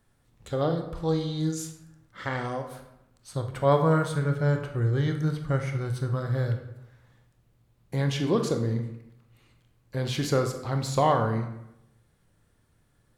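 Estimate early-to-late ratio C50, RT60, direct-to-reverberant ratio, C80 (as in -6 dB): 7.5 dB, 0.80 s, 5.0 dB, 10.5 dB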